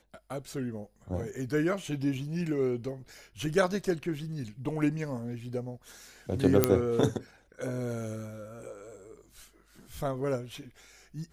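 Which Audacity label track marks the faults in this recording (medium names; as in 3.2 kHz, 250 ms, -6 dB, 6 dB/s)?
6.640000	6.640000	pop -6 dBFS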